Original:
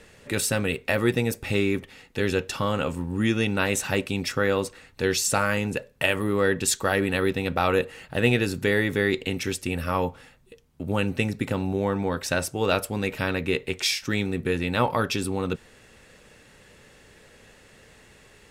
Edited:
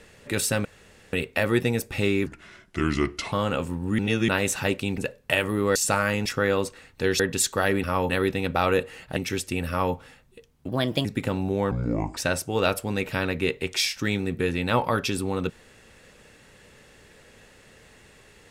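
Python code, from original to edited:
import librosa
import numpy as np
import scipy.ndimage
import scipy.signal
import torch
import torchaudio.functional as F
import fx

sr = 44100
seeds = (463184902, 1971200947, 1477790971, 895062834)

y = fx.edit(x, sr, fx.insert_room_tone(at_s=0.65, length_s=0.48),
    fx.speed_span(start_s=1.78, length_s=0.82, speed=0.77),
    fx.reverse_span(start_s=3.26, length_s=0.3),
    fx.swap(start_s=4.25, length_s=0.94, other_s=5.69, other_length_s=0.78),
    fx.cut(start_s=8.18, length_s=1.13),
    fx.duplicate(start_s=9.83, length_s=0.26, to_s=7.11),
    fx.speed_span(start_s=10.83, length_s=0.46, speed=1.26),
    fx.speed_span(start_s=11.95, length_s=0.28, speed=0.61), tone=tone)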